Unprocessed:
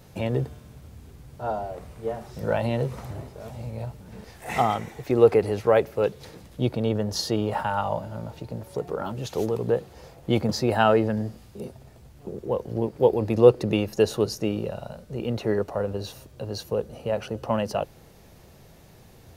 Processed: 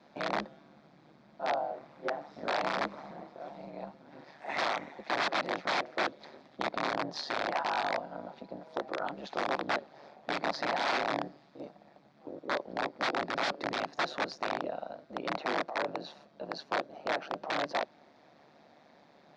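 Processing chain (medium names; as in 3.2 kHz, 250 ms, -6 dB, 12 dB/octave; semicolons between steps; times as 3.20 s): ring modulator 73 Hz; integer overflow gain 21 dB; cabinet simulation 330–4200 Hz, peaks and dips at 440 Hz -7 dB, 700 Hz +4 dB, 2.9 kHz -9 dB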